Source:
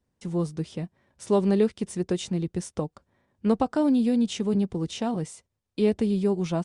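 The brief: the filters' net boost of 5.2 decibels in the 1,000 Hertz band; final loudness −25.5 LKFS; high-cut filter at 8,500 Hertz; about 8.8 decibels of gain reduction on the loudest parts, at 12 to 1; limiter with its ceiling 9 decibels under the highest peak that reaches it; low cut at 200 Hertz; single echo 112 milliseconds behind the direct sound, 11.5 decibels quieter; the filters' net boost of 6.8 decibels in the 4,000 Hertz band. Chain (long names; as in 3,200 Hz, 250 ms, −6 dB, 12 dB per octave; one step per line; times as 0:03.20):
high-pass filter 200 Hz
low-pass filter 8,500 Hz
parametric band 1,000 Hz +6.5 dB
parametric band 4,000 Hz +8.5 dB
downward compressor 12 to 1, threshold −24 dBFS
brickwall limiter −21.5 dBFS
single-tap delay 112 ms −11.5 dB
level +7 dB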